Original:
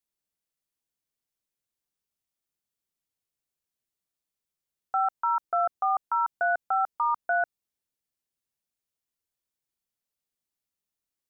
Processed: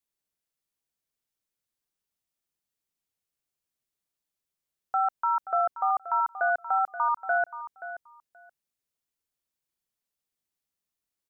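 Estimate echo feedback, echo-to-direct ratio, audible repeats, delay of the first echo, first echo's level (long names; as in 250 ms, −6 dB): 16%, −13.0 dB, 2, 528 ms, −13.0 dB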